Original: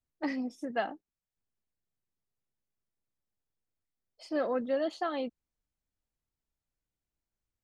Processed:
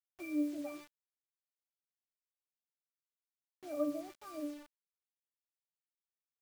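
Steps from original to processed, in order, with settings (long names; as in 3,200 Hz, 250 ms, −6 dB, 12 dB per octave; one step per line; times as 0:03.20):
resonances in every octave B, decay 0.65 s
speed change +19%
bit reduction 11 bits
level +11 dB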